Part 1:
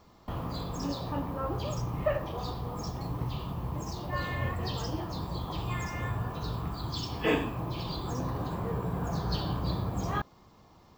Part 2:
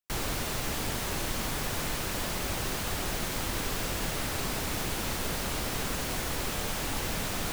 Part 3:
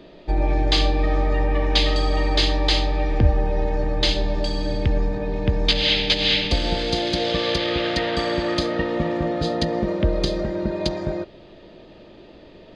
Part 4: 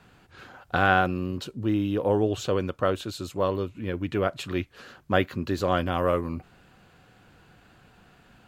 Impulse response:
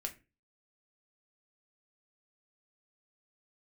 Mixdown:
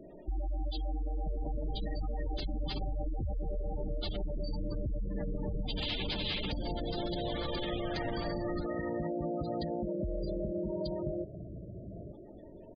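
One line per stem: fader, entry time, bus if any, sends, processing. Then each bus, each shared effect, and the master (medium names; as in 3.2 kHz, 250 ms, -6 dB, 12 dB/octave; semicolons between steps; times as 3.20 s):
-3.5 dB, 1.90 s, no send, Chebyshev low-pass 670 Hz, order 6; compression 4:1, threshold -40 dBFS, peak gain reduction 14 dB
+0.5 dB, 1.15 s, no send, none
-1.5 dB, 0.00 s, no send, peak limiter -16 dBFS, peak gain reduction 11.5 dB; feedback comb 210 Hz, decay 1.3 s, mix 30%
-18.0 dB, 0.00 s, no send, spectral peaks clipped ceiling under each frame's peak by 22 dB; Chebyshev low-pass 3.3 kHz, order 10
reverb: none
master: spectral gate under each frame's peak -15 dB strong; band-stop 480 Hz, Q 12; compression 4:1, threshold -32 dBFS, peak gain reduction 8 dB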